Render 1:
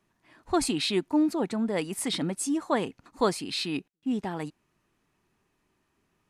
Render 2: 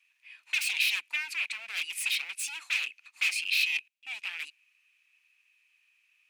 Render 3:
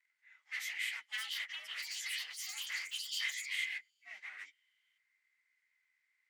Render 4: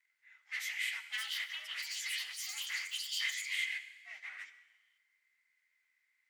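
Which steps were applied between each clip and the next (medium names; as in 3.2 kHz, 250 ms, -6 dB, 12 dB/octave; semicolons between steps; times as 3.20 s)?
wavefolder -29 dBFS; resonant high-pass 2.5 kHz, resonance Q 9.3
frequency axis rescaled in octaves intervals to 91%; ever faster or slower copies 777 ms, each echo +7 st, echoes 3; trim -8.5 dB
bass shelf 400 Hz -8 dB; reverberation RT60 1.2 s, pre-delay 53 ms, DRR 12 dB; trim +1.5 dB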